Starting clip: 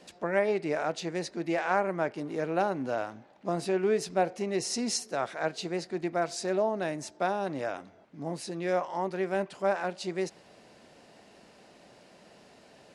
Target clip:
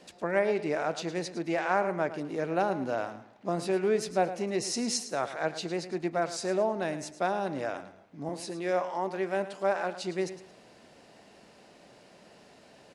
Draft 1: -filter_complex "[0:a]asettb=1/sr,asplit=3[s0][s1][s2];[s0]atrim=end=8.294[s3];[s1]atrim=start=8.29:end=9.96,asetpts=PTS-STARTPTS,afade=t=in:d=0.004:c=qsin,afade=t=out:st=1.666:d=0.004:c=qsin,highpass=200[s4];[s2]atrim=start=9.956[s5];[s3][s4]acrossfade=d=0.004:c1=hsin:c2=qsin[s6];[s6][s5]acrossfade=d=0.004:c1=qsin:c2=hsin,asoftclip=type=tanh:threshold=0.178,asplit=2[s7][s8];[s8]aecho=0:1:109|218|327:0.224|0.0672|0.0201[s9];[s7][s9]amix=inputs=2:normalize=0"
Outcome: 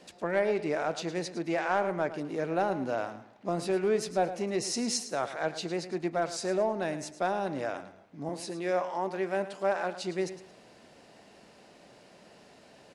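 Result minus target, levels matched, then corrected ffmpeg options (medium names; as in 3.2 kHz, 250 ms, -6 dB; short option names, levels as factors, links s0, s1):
saturation: distortion +22 dB
-filter_complex "[0:a]asettb=1/sr,asplit=3[s0][s1][s2];[s0]atrim=end=8.294[s3];[s1]atrim=start=8.29:end=9.96,asetpts=PTS-STARTPTS,afade=t=in:d=0.004:c=qsin,afade=t=out:st=1.666:d=0.004:c=qsin,highpass=200[s4];[s2]atrim=start=9.956[s5];[s3][s4]acrossfade=d=0.004:c1=hsin:c2=qsin[s6];[s6][s5]acrossfade=d=0.004:c1=qsin:c2=hsin,asoftclip=type=tanh:threshold=0.708,asplit=2[s7][s8];[s8]aecho=0:1:109|218|327:0.224|0.0672|0.0201[s9];[s7][s9]amix=inputs=2:normalize=0"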